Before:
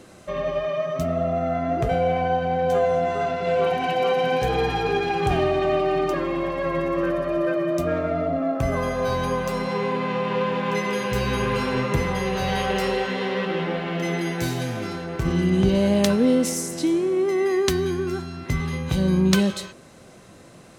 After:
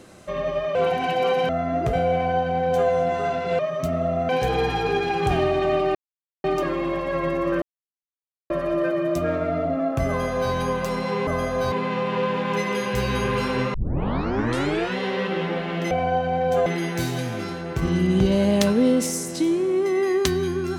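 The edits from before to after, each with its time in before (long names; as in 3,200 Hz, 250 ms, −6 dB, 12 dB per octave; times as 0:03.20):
0:00.75–0:01.45: swap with 0:03.55–0:04.29
0:02.09–0:02.84: duplicate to 0:14.09
0:05.95: splice in silence 0.49 s
0:07.13: splice in silence 0.88 s
0:08.71–0:09.16: duplicate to 0:09.90
0:11.92: tape start 1.22 s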